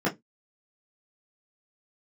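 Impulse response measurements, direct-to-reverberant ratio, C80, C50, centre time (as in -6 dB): -7.0 dB, 30.0 dB, 17.5 dB, 17 ms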